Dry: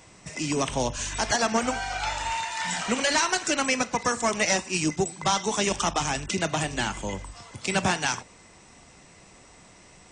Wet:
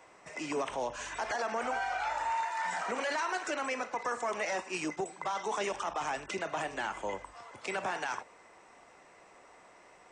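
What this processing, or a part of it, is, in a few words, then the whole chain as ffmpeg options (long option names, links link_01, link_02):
DJ mixer with the lows and highs turned down: -filter_complex "[0:a]asettb=1/sr,asplit=3[link_01][link_02][link_03];[link_01]atrim=end=2.104[link_04];[link_02]atrim=start=2.1:end=2.99,asetpts=PTS-STARTPTS,afade=type=in:duration=0.004:curve=qsin,afade=type=out:start_time=0.886:duration=0.004:curve=qsin,equalizer=frequency=3000:width=1.7:gain=-6[link_05];[link_03]atrim=start=2.986[link_06];[link_04][link_05]acrossfade=duration=0.004:curve1=hsin:curve2=qsin[link_07];[link_07][link_06]acrossfade=duration=0.004:curve1=qsin:curve2=hsin,acrossover=split=370 2100:gain=0.1 1 0.2[link_08][link_09][link_10];[link_08][link_09][link_10]amix=inputs=3:normalize=0,alimiter=level_in=1dB:limit=-24dB:level=0:latency=1:release=29,volume=-1dB"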